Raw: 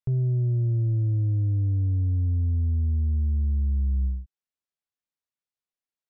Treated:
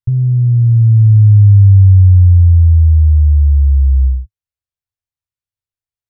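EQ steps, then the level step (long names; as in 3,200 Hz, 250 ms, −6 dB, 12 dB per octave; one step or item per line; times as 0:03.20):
low shelf with overshoot 150 Hz +13 dB, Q 3
−2.0 dB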